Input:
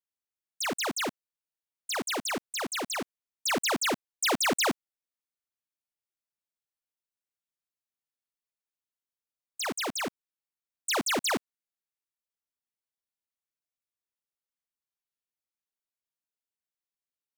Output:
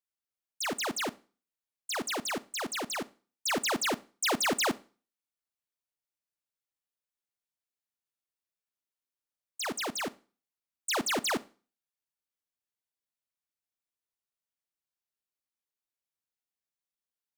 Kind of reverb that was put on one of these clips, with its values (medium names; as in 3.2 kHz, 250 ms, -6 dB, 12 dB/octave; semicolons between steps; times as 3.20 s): Schroeder reverb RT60 0.37 s, combs from 27 ms, DRR 18.5 dB; trim -2 dB